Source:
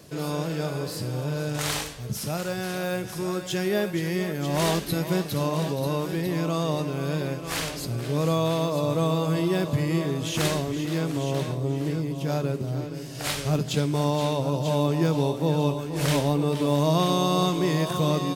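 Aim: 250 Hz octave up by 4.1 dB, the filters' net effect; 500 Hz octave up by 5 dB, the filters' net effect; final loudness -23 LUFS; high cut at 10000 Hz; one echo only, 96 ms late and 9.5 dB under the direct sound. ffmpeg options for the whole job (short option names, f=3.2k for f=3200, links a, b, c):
-af "lowpass=10k,equalizer=f=250:t=o:g=4.5,equalizer=f=500:t=o:g=5,aecho=1:1:96:0.335,volume=-0.5dB"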